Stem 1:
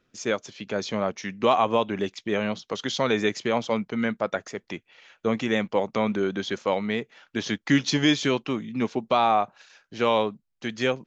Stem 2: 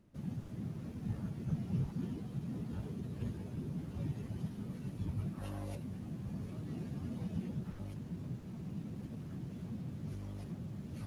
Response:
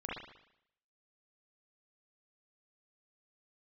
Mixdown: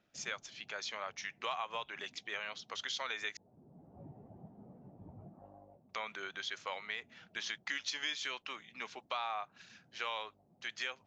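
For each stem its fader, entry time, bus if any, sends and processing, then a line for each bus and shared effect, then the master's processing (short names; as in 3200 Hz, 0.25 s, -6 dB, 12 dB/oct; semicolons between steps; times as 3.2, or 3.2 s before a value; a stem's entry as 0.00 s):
-3.5 dB, 0.00 s, muted 3.37–5.89, no send, HPF 1300 Hz 12 dB/oct; high shelf 6800 Hz -6 dB
-9.0 dB, 0.00 s, no send, synth low-pass 740 Hz, resonance Q 4.1; low shelf 160 Hz -11.5 dB; auto duck -13 dB, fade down 0.70 s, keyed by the first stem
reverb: off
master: compressor 3:1, threshold -36 dBFS, peak gain reduction 8 dB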